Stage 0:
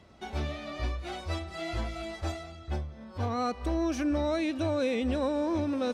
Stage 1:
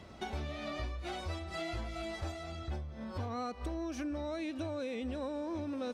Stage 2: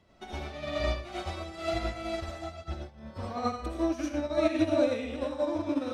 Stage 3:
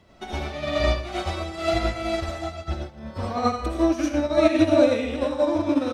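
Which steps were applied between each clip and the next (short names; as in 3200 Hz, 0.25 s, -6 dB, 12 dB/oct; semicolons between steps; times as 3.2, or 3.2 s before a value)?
compressor 6:1, threshold -41 dBFS, peak gain reduction 15 dB; gain +4.5 dB
digital reverb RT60 0.7 s, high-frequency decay 0.9×, pre-delay 40 ms, DRR -3.5 dB; upward expander 2.5:1, over -43 dBFS; gain +8.5 dB
echo 0.158 s -20.5 dB; gain +8 dB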